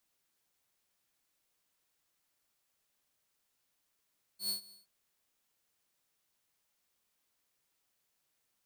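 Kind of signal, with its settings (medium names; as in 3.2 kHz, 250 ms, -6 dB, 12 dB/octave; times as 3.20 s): ADSR saw 4.39 kHz, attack 103 ms, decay 114 ms, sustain -22.5 dB, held 0.32 s, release 154 ms -28.5 dBFS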